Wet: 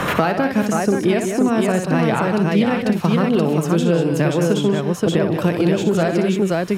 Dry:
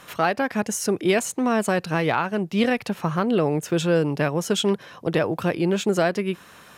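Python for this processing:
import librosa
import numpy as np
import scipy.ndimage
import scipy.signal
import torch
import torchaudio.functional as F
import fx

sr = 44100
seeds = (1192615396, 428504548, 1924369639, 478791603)

p1 = fx.low_shelf(x, sr, hz=460.0, db=8.0)
p2 = p1 + fx.echo_multitap(p1, sr, ms=(59, 147, 184, 527), db=(-7.5, -16.5, -10.0, -4.0), dry=0)
p3 = fx.band_squash(p2, sr, depth_pct=100)
y = p3 * librosa.db_to_amplitude(-2.5)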